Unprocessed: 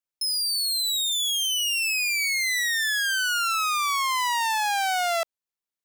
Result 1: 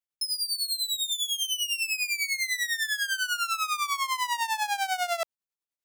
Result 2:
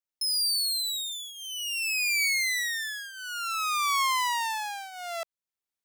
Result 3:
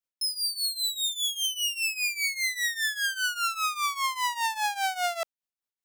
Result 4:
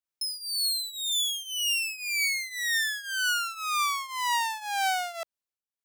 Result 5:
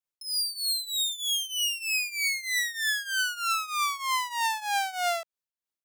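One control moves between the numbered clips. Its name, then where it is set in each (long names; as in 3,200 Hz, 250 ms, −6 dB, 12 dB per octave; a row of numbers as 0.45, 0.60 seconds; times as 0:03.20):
shaped tremolo, speed: 10, 0.56, 5, 1.9, 3.2 Hertz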